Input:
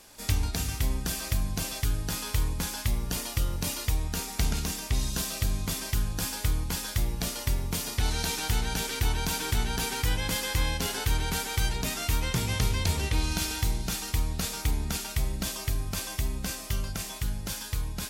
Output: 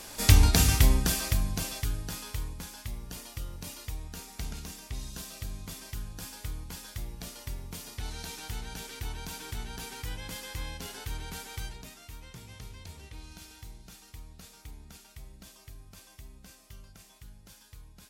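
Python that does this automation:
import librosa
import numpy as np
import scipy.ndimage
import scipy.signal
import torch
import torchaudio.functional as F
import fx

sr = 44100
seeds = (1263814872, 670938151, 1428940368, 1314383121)

y = fx.gain(x, sr, db=fx.line((0.73, 8.5), (1.32, 1.0), (2.67, -10.5), (11.59, -10.5), (12.01, -19.0)))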